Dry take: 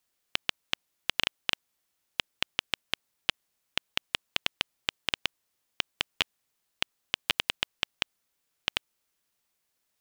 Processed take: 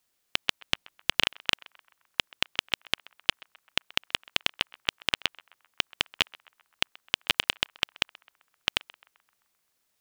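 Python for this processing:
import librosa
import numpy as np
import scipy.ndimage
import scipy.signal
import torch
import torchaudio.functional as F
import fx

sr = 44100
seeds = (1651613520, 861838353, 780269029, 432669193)

y = fx.low_shelf(x, sr, hz=210.0, db=6.5, at=(0.61, 1.22))
y = fx.echo_banded(y, sr, ms=130, feedback_pct=58, hz=1200.0, wet_db=-20.5)
y = y * librosa.db_to_amplitude(3.0)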